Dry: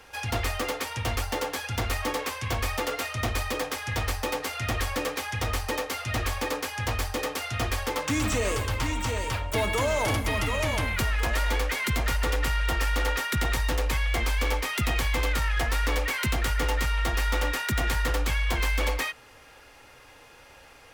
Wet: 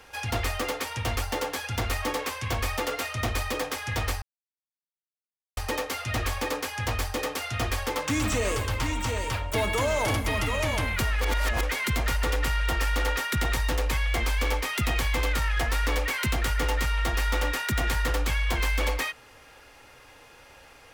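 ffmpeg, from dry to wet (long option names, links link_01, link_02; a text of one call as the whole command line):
ffmpeg -i in.wav -filter_complex "[0:a]asplit=5[link_01][link_02][link_03][link_04][link_05];[link_01]atrim=end=4.22,asetpts=PTS-STARTPTS,afade=type=out:start_time=4.216:duration=0.004:curve=hsin[link_06];[link_02]atrim=start=4.22:end=5.57,asetpts=PTS-STARTPTS,volume=0[link_07];[link_03]atrim=start=5.57:end=11.212,asetpts=PTS-STARTPTS,afade=type=in:duration=0.004:curve=hsin[link_08];[link_04]atrim=start=11.208:end=11.632,asetpts=PTS-STARTPTS,areverse[link_09];[link_05]atrim=start=11.628[link_10];[link_06][link_07][link_08]concat=n=3:v=0:a=1[link_11];[link_11][link_09]acrossfade=duration=0.004:curve1=hsin:curve2=hsin[link_12];[link_12][link_10]acrossfade=duration=0.004:curve1=hsin:curve2=hsin" out.wav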